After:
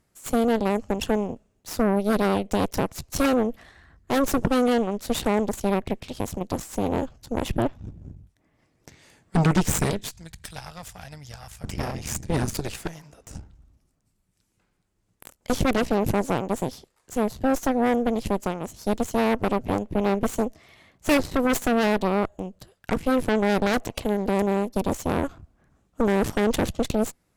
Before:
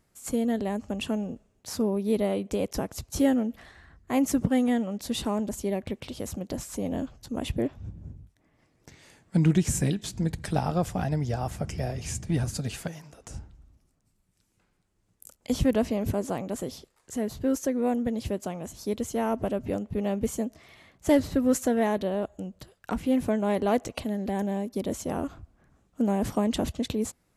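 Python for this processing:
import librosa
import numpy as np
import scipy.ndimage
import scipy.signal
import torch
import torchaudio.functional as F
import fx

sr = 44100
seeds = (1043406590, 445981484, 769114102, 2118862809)

y = fx.tone_stack(x, sr, knobs='10-0-10', at=(10.08, 11.64))
y = fx.cheby_harmonics(y, sr, harmonics=(8,), levels_db=(-10,), full_scale_db=-11.0)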